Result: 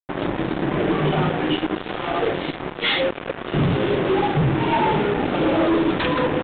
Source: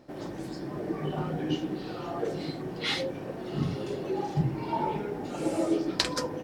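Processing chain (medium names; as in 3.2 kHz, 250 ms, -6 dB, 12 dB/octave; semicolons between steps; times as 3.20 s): 1.29–3.54 s: bass shelf 260 Hz -11.5 dB; fuzz box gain 37 dB, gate -39 dBFS; trim -2.5 dB; µ-law 64 kbps 8 kHz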